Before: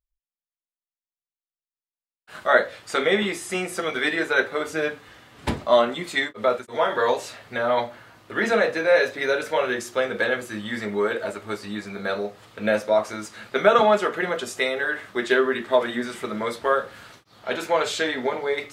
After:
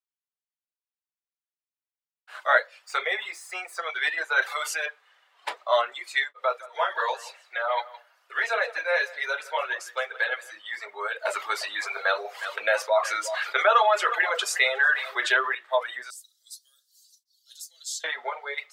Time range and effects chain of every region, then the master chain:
2.86–3.9 median filter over 3 samples + bell 3000 Hz -6.5 dB 0.27 oct
4.42–4.86 tilt +2.5 dB/oct + notch 430 Hz, Q 14 + fast leveller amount 70%
6.36–10.52 HPF 280 Hz + echo 0.165 s -9.5 dB
11.25–15.55 echo 0.361 s -15.5 dB + fast leveller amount 50%
16.1–18.04 inverse Chebyshev high-pass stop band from 2500 Hz + tilt +2.5 dB/oct
whole clip: high shelf 3800 Hz -8.5 dB; reverb removal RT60 1.8 s; Bessel high-pass 930 Hz, order 6; gain +2 dB

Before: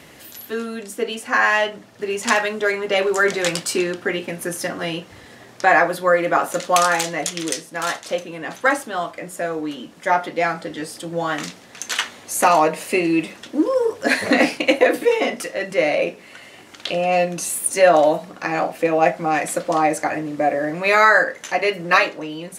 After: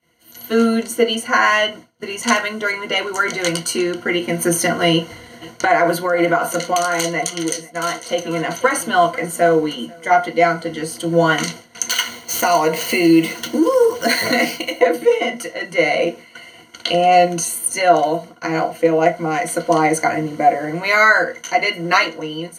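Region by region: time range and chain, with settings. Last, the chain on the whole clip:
4.92–10.11 compressor 12:1, threshold -17 dBFS + echo 0.493 s -18.5 dB
11.9–14.8 median filter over 5 samples + high shelf 4000 Hz +10.5 dB + compressor 2:1, threshold -25 dBFS
whole clip: ripple EQ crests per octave 1.9, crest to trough 15 dB; AGC; expander -28 dBFS; gain -1 dB

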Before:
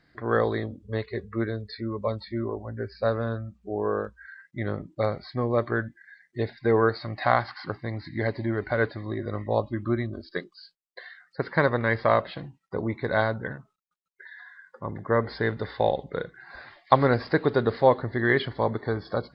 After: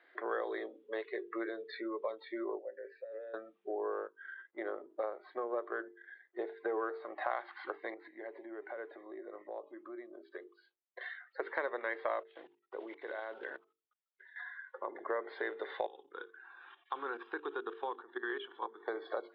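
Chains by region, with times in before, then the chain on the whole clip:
2.59–3.34 negative-ratio compressor -35 dBFS + vowel filter e
3.92–7.31 half-wave gain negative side -3 dB + resonant high shelf 1700 Hz -7.5 dB, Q 1.5
7.94–11.01 LPF 1100 Hz 6 dB/oct + compressor 3:1, threshold -44 dBFS
12.2–14.36 block floating point 5-bit + level quantiser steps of 20 dB
15.86–18.88 fixed phaser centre 3000 Hz, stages 8 + level quantiser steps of 14 dB
whole clip: Chebyshev band-pass 350–3500 Hz, order 4; notches 50/100/150/200/250/300/350/400/450 Hz; compressor 3:1, threshold -39 dBFS; gain +1.5 dB

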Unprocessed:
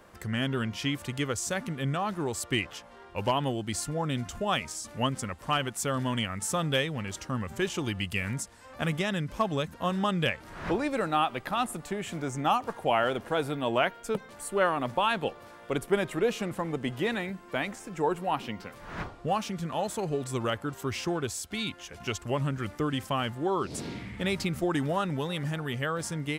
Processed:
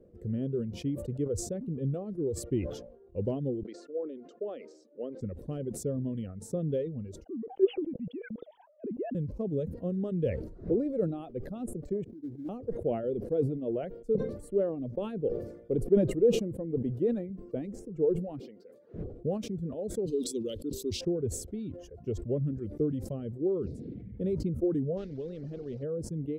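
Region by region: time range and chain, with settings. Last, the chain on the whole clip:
3.63–5.21 HPF 350 Hz 24 dB/oct + air absorption 190 m
7.24–9.15 sine-wave speech + bell 1700 Hz -12 dB 2.6 oct
12.04–12.49 expander -31 dBFS + vocal tract filter u + sample-rate reducer 1900 Hz, jitter 20%
18.4–18.94 bell 4600 Hz +7 dB 0.35 oct + compressor 2:1, threshold -41 dBFS + HPF 360 Hz
20.06–21.01 resonant high shelf 2600 Hz +13.5 dB, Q 3 + fixed phaser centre 310 Hz, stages 4 + mismatched tape noise reduction encoder only
24.97–25.83 delta modulation 64 kbps, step -36 dBFS + LPF 4400 Hz 24 dB/oct + spectral compressor 2:1
whole clip: reverb removal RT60 1.2 s; EQ curve 290 Hz 0 dB, 480 Hz +4 dB, 910 Hz -30 dB; sustainer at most 74 dB/s

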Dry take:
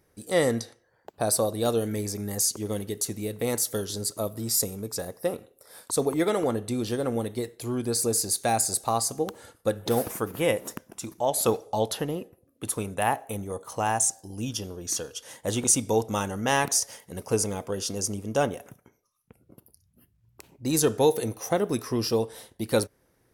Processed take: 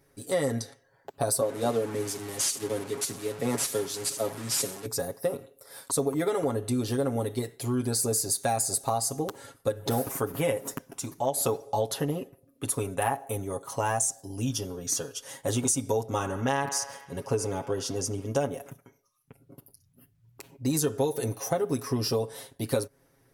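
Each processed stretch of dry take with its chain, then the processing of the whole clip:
1.41–4.86 delta modulation 64 kbps, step -29.5 dBFS + HPF 130 Hz 24 dB/oct + three-band expander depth 100%
16.05–18.26 high shelf 7000 Hz -10 dB + band-limited delay 72 ms, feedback 60%, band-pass 1500 Hz, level -12 dB
whole clip: comb 7.3 ms, depth 81%; dynamic EQ 2900 Hz, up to -4 dB, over -42 dBFS, Q 0.86; compressor, threshold -23 dBFS

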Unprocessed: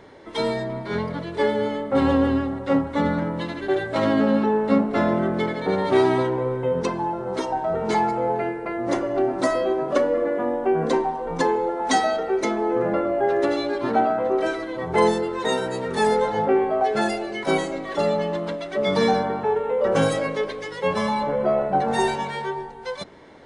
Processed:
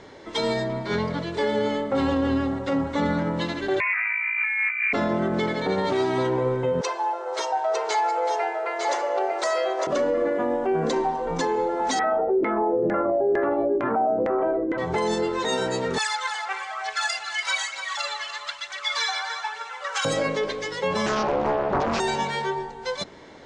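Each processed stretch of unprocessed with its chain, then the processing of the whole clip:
3.8–4.93 negative-ratio compressor -27 dBFS + inverted band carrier 2600 Hz + HPF 940 Hz 24 dB/oct
6.81–9.87 inverse Chebyshev high-pass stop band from 190 Hz, stop band 50 dB + echo 0.903 s -6 dB
11.99–14.78 LPF 2900 Hz 24 dB/oct + LFO low-pass saw down 2.2 Hz 330–1900 Hz
15.98–20.05 phaser 1.1 Hz, delay 3.1 ms, feedback 61% + HPF 1100 Hz 24 dB/oct + lo-fi delay 0.291 s, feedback 35%, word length 8-bit, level -11 dB
21.06–22 steep low-pass 5800 Hz + Doppler distortion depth 0.83 ms
whole clip: steep low-pass 7700 Hz 36 dB/oct; high shelf 4600 Hz +10.5 dB; limiter -16.5 dBFS; gain +1 dB

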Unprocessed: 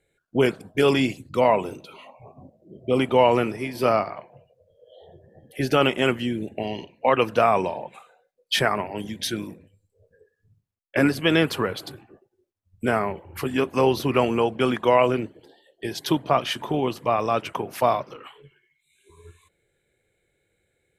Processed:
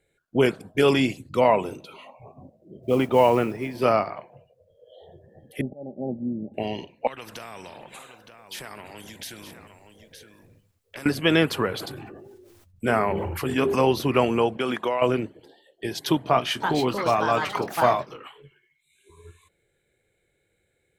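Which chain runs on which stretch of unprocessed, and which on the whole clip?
2.82–3.82 high shelf 3300 Hz -10 dB + modulation noise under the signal 30 dB
5.61–6.54 auto swell 0.42 s + rippled Chebyshev low-pass 830 Hz, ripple 9 dB
7.07–11.06 compressor 2.5:1, threshold -41 dBFS + echo 0.917 s -19.5 dB + spectral compressor 2:1
11.71–13.91 notches 50/100/150/200/250/300/350/400/450 Hz + sustainer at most 27 dB/s
14.57–15.02 HPF 270 Hz 6 dB/oct + compressor, threshold -20 dBFS
16.19–18.18 notch 540 Hz + echoes that change speed 0.363 s, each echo +5 st, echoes 2, each echo -6 dB + doubler 24 ms -11.5 dB
whole clip: dry

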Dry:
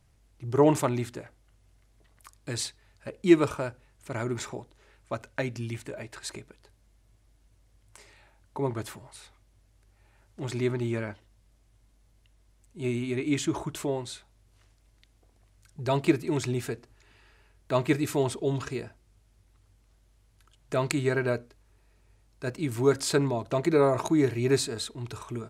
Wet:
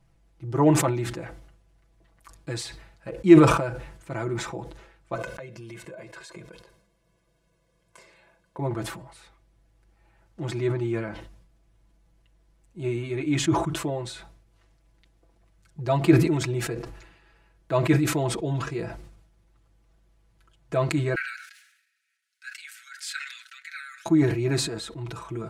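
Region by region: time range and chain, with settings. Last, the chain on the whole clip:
5.15–8.59 resonant low shelf 120 Hz -14 dB, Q 1.5 + comb 1.9 ms, depth 70% + compressor 8:1, threshold -38 dBFS
21.15–24.06 steep high-pass 1400 Hz 96 dB/oct + chopper 2.8 Hz, depth 60%, duty 85%
whole clip: high shelf 3100 Hz -9 dB; comb 6 ms, depth 80%; sustainer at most 65 dB/s

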